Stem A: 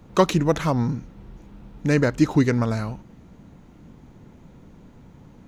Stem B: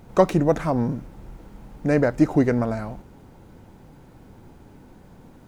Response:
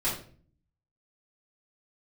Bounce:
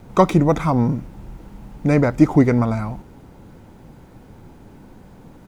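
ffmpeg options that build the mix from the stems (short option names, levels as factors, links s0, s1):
-filter_complex "[0:a]lowpass=3200,volume=0.668[s0];[1:a]adelay=1.1,volume=1.41[s1];[s0][s1]amix=inputs=2:normalize=0"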